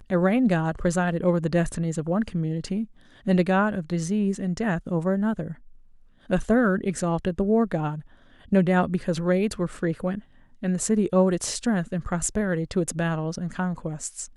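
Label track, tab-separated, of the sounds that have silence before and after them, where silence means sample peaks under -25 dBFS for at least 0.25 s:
3.270000	5.480000	sound
6.300000	7.940000	sound
8.530000	10.150000	sound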